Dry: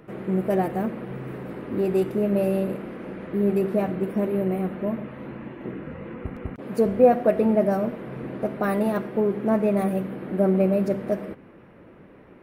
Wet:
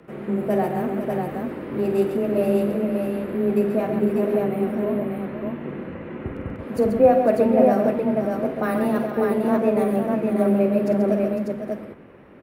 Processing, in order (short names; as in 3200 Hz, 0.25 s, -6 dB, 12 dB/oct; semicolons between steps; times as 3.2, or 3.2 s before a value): frequency shift +14 Hz; on a send: tapped delay 48/135/503/595 ms -9.5/-7/-9.5/-3.5 dB